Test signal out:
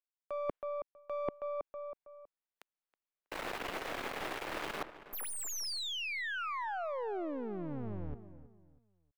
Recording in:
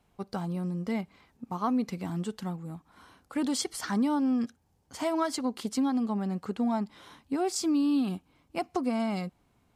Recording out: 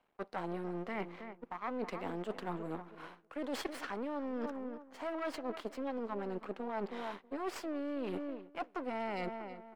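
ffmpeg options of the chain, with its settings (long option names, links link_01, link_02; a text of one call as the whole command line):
ffmpeg -i in.wav -filter_complex "[0:a]aeval=exprs='max(val(0),0)':channel_layout=same,agate=range=-10dB:threshold=-57dB:ratio=16:detection=peak,acrossover=split=290 3100:gain=0.126 1 0.141[link_01][link_02][link_03];[link_01][link_02][link_03]amix=inputs=3:normalize=0,asplit=2[link_04][link_05];[link_05]adelay=322,lowpass=frequency=2000:poles=1,volume=-17dB,asplit=2[link_06][link_07];[link_07]adelay=322,lowpass=frequency=2000:poles=1,volume=0.32,asplit=2[link_08][link_09];[link_09]adelay=322,lowpass=frequency=2000:poles=1,volume=0.32[link_10];[link_04][link_06][link_08][link_10]amix=inputs=4:normalize=0,areverse,acompressor=threshold=-47dB:ratio=20,areverse,volume=12dB" out.wav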